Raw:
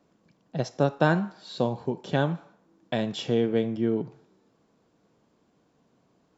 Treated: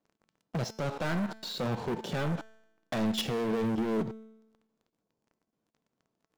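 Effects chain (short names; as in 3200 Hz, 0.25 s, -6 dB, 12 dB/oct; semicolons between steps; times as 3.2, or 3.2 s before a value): spectral gain 5.02–5.51, 1100–4200 Hz -6 dB; level quantiser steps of 17 dB; sample leveller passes 5; resonator 220 Hz, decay 0.92 s, mix 60%; gain +2 dB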